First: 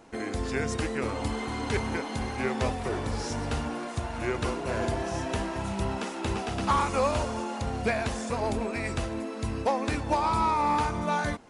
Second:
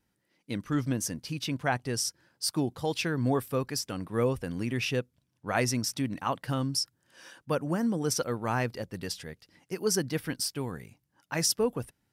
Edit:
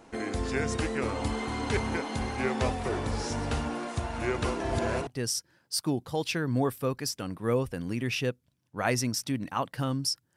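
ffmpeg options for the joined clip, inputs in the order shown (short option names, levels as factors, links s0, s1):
-filter_complex "[0:a]apad=whole_dur=10.36,atrim=end=10.36,asplit=2[s0][s1];[s0]atrim=end=4.602[s2];[s1]atrim=start=4.598:end=5.072,asetpts=PTS-STARTPTS,areverse[s3];[1:a]atrim=start=1.768:end=7.06[s4];[s2][s3]acrossfade=d=0.004:c1=hsin:c2=hsin[s5];[s5][s4]acrossfade=d=0.004:c1=hsin:c2=hsin"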